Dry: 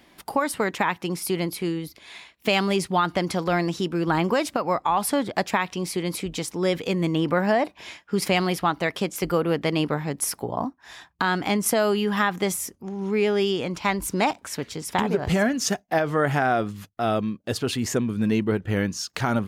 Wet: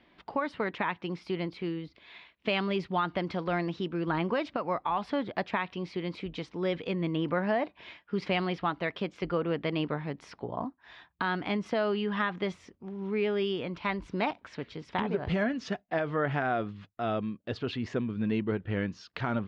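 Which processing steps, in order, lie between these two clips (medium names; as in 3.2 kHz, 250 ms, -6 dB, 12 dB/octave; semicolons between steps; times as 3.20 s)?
low-pass 3.8 kHz 24 dB/octave; band-stop 800 Hz, Q 17; trim -7 dB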